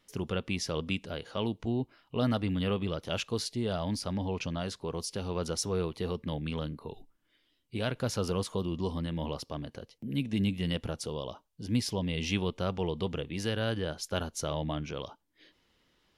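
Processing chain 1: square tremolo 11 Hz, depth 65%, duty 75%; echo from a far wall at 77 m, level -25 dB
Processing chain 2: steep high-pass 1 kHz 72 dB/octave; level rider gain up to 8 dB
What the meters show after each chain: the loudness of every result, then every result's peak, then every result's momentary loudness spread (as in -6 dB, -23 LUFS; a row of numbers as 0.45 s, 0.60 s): -34.5 LUFS, -32.5 LUFS; -17.0 dBFS, -9.5 dBFS; 8 LU, 12 LU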